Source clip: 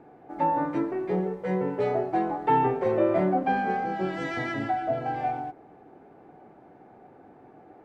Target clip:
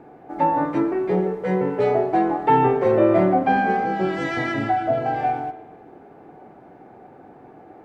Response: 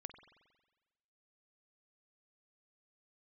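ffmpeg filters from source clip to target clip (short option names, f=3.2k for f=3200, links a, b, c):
-filter_complex "[0:a]asplit=2[a][b];[1:a]atrim=start_sample=2205[c];[b][c]afir=irnorm=-1:irlink=0,volume=13dB[d];[a][d]amix=inputs=2:normalize=0,volume=-4.5dB"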